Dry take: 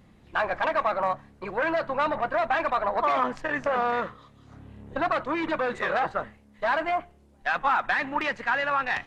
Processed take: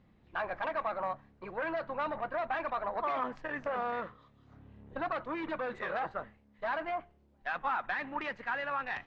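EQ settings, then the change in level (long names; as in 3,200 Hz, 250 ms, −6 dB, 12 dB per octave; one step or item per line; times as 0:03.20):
high-frequency loss of the air 130 metres
−8.5 dB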